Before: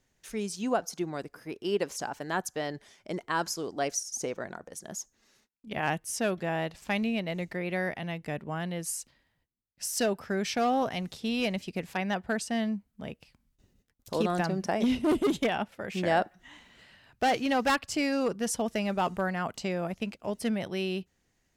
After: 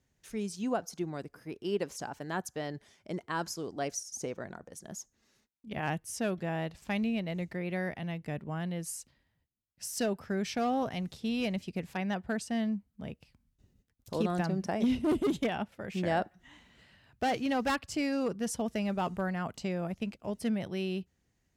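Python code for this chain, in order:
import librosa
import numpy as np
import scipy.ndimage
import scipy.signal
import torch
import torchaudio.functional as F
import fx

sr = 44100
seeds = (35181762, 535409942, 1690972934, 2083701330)

y = scipy.signal.sosfilt(scipy.signal.butter(2, 45.0, 'highpass', fs=sr, output='sos'), x)
y = fx.low_shelf(y, sr, hz=220.0, db=9.0)
y = y * 10.0 ** (-5.5 / 20.0)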